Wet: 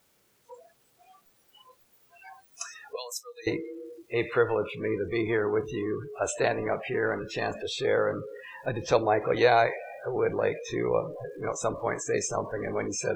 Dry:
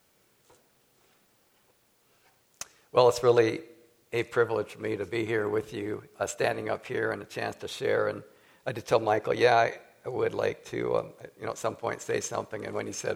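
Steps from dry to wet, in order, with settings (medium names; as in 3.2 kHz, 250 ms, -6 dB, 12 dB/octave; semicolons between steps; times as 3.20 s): jump at every zero crossing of -32.5 dBFS; 2.96–3.47 s: differentiator; spectral noise reduction 29 dB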